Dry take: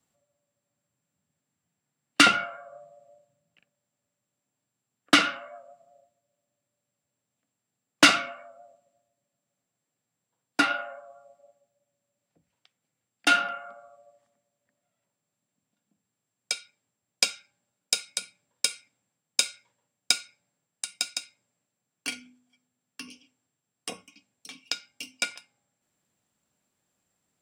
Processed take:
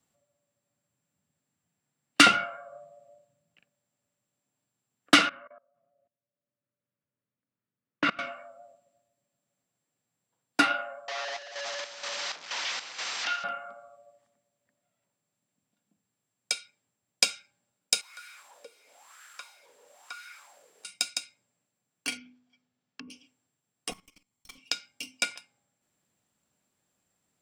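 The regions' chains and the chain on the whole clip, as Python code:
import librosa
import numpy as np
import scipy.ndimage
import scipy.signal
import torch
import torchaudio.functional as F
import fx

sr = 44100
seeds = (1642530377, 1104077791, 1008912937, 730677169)

y = fx.chain(x, sr, fx.lowpass(hz=2000.0, slope=12),
    fx.level_steps(step_db=23),
    fx.peak_eq(hz=760.0, db=-11.5, octaves=0.4), at=(5.29, 8.19))
y = fx.chain(y, sr, fx.delta_mod(bps=32000, step_db=-24.0),
    fx.highpass(hz=930.0, slope=12),
    fx.chopper(hz=2.1, depth_pct=65, duty_pct=60), at=(11.08, 13.44))
y = fx.chain(y, sr, fx.crossing_spikes(level_db=-18.5),
    fx.wah_lfo(hz=1.0, low_hz=430.0, high_hz=1500.0, q=5.1), at=(18.01, 20.85))
y = fx.chain(y, sr, fx.env_lowpass_down(base_hz=660.0, full_db=-39.5),
    fx.lowpass(hz=6000.0, slope=24), at=(22.17, 23.1))
y = fx.chain(y, sr, fx.lower_of_two(delay_ms=0.92),
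    fx.high_shelf(hz=8900.0, db=4.0),
    fx.level_steps(step_db=14), at=(23.91, 24.58))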